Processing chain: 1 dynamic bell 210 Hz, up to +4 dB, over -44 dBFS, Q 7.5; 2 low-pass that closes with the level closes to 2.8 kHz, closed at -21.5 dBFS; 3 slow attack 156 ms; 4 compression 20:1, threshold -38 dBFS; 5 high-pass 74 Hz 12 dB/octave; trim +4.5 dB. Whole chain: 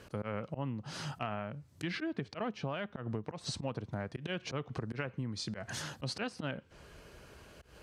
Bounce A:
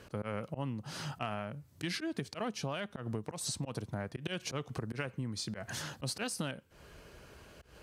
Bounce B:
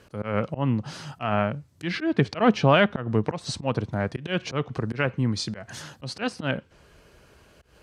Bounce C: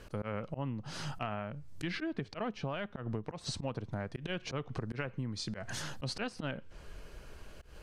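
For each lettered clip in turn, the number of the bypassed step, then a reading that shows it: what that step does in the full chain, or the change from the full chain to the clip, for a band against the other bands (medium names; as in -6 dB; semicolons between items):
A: 2, 8 kHz band +6.5 dB; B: 4, mean gain reduction 8.5 dB; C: 5, crest factor change -2.0 dB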